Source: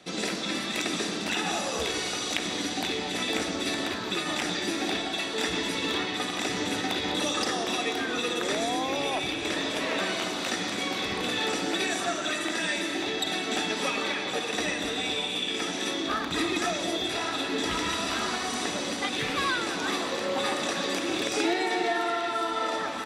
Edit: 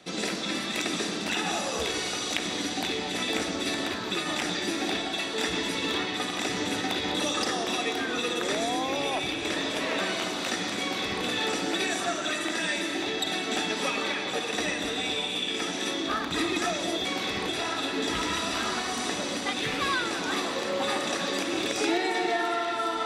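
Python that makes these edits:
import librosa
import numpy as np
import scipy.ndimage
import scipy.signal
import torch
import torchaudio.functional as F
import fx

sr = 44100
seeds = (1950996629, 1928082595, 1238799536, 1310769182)

y = fx.edit(x, sr, fx.duplicate(start_s=10.8, length_s=0.44, to_s=17.05), tone=tone)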